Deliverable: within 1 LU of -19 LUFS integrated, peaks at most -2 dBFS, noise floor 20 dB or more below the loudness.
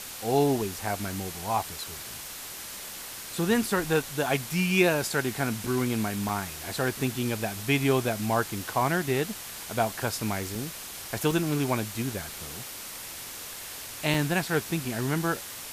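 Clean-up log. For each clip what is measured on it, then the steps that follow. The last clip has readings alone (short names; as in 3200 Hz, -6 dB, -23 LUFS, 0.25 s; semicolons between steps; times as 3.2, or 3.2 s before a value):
dropouts 7; longest dropout 2.2 ms; noise floor -40 dBFS; noise floor target -49 dBFS; loudness -29.0 LUFS; peak -9.0 dBFS; loudness target -19.0 LUFS
-> interpolate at 0.87/5.67/6.29/10.55/11.31/14.14/14.85, 2.2 ms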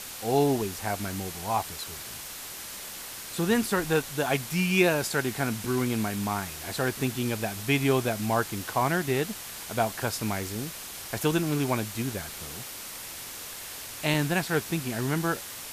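dropouts 0; noise floor -40 dBFS; noise floor target -49 dBFS
-> denoiser 9 dB, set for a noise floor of -40 dBFS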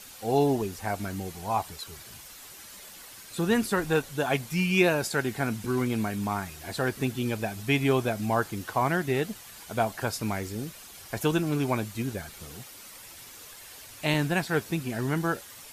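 noise floor -47 dBFS; noise floor target -49 dBFS
-> denoiser 6 dB, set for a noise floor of -47 dBFS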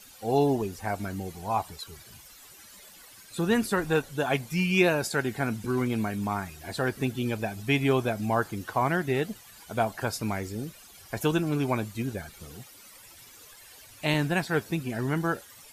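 noise floor -51 dBFS; loudness -28.5 LUFS; peak -9.0 dBFS; loudness target -19.0 LUFS
-> gain +9.5 dB; limiter -2 dBFS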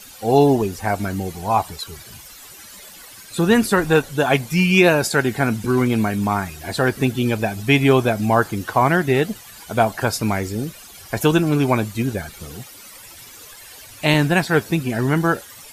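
loudness -19.0 LUFS; peak -2.0 dBFS; noise floor -42 dBFS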